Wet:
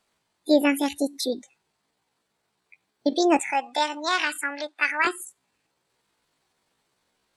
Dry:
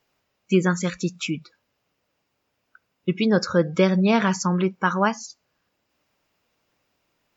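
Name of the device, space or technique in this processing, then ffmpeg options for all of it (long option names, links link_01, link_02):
chipmunk voice: -filter_complex "[0:a]asettb=1/sr,asplit=3[link_01][link_02][link_03];[link_01]atrim=end=3.414[link_04];[link_02]atrim=start=3.41:end=5.08,asetpts=PTS-STARTPTS,afade=type=in:duration=0.004:curve=qsin,afade=type=out:start_time=1.666:duration=0.004:curve=qsin,acrossover=split=470 6500:gain=0.1 1 0.0708[link_05][link_06][link_07];[link_05][link_06][link_07]amix=inputs=3:normalize=0[link_08];[link_03]atrim=start=5.076[link_09];[link_04][link_08]acrossfade=duration=0.004:curve1=hsin:curve2=qsin[link_10];[link_10][link_09]acrossfade=duration=0.004:curve1=qsin:curve2=hsin,asetrate=70004,aresample=44100,atempo=0.629961"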